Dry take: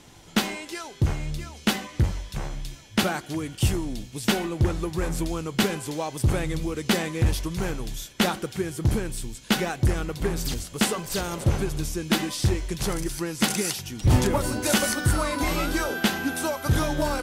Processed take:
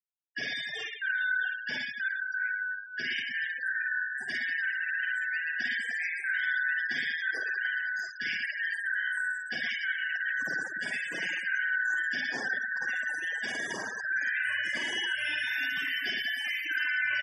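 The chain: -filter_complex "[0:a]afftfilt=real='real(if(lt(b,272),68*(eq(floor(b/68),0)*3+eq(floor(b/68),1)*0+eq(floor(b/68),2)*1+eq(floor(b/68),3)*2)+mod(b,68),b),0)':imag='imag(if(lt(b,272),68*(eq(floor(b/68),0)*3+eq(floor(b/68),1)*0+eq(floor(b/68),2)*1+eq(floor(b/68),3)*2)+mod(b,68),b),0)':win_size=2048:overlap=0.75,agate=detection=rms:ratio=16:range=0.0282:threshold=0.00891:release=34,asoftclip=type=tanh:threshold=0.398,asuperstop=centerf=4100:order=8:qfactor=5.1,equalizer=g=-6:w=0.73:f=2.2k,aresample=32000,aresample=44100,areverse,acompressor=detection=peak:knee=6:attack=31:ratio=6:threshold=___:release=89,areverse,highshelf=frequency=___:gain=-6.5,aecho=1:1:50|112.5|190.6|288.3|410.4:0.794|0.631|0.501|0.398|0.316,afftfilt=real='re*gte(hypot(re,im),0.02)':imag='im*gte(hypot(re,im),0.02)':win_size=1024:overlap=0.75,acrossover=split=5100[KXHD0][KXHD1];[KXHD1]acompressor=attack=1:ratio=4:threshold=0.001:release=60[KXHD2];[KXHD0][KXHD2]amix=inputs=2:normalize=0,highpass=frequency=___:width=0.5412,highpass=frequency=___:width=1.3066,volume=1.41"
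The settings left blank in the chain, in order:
0.0126, 11k, 170, 170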